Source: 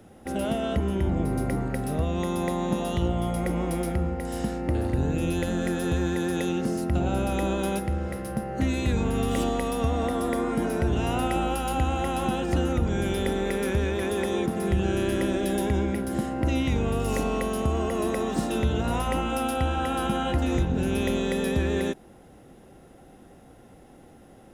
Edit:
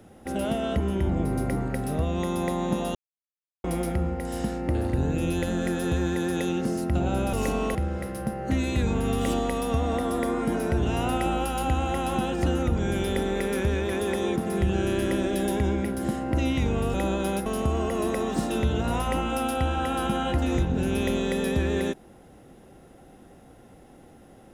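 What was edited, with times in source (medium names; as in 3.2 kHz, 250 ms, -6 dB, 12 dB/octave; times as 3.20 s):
2.95–3.64 s: mute
7.33–7.85 s: swap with 17.04–17.46 s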